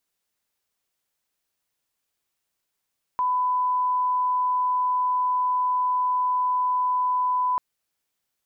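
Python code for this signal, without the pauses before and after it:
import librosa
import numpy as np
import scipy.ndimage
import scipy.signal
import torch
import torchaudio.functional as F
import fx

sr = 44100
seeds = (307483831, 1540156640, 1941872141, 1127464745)

y = fx.lineup_tone(sr, length_s=4.39, level_db=-20.0)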